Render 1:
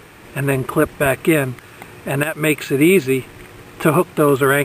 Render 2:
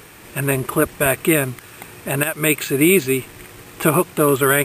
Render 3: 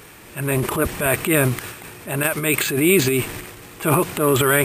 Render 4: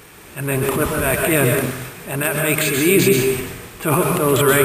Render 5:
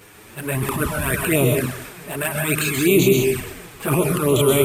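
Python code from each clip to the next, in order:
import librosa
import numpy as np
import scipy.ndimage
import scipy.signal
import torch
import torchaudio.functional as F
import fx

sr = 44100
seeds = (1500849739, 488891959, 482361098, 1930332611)

y1 = fx.high_shelf(x, sr, hz=4700.0, db=10.5)
y1 = F.gain(torch.from_numpy(y1), -2.0).numpy()
y2 = fx.transient(y1, sr, attack_db=-6, sustain_db=10)
y2 = F.gain(torch.from_numpy(y2), -1.0).numpy()
y3 = fx.rev_plate(y2, sr, seeds[0], rt60_s=0.65, hf_ratio=0.8, predelay_ms=115, drr_db=1.5)
y4 = fx.env_flanger(y3, sr, rest_ms=11.1, full_db=-12.0)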